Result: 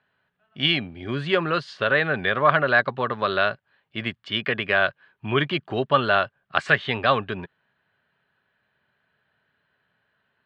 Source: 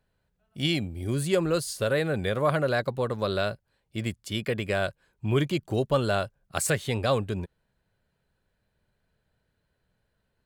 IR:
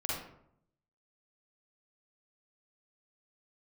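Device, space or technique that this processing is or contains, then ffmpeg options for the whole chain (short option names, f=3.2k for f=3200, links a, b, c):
kitchen radio: -af "highpass=200,equalizer=f=200:t=q:w=4:g=-5,equalizer=f=320:t=q:w=4:g=-7,equalizer=f=500:t=q:w=4:g=-8,equalizer=f=1.2k:t=q:w=4:g=5,equalizer=f=1.7k:t=q:w=4:g=7,equalizer=f=3k:t=q:w=4:g=4,lowpass=f=3.6k:w=0.5412,lowpass=f=3.6k:w=1.3066,volume=6.5dB"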